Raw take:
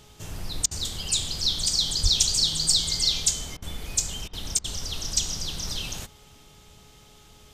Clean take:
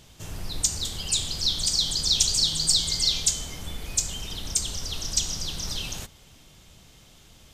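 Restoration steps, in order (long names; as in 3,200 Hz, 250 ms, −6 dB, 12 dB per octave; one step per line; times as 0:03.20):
hum removal 420.5 Hz, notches 3
0:02.02–0:02.14: high-pass filter 140 Hz 24 dB per octave
repair the gap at 0:00.66/0:03.57/0:04.28/0:04.59, 51 ms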